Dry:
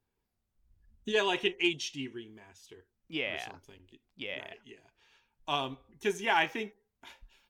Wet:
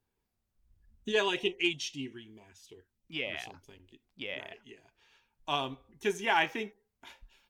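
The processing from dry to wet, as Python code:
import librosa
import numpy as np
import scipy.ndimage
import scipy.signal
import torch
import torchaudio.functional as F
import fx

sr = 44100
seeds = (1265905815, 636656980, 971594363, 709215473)

y = fx.filter_lfo_notch(x, sr, shape='sine', hz=fx.line((1.28, 1.5), (3.67, 5.4)), low_hz=390.0, high_hz=1700.0, q=1.1, at=(1.28, 3.67), fade=0.02)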